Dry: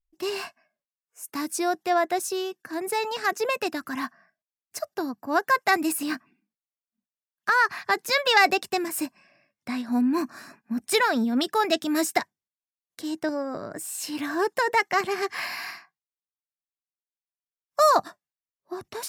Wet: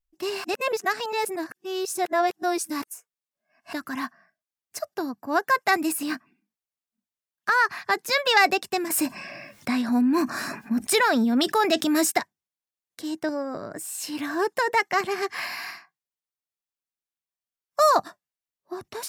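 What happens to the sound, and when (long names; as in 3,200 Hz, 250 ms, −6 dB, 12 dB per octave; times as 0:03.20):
0:00.44–0:03.73: reverse
0:08.90–0:12.12: envelope flattener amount 50%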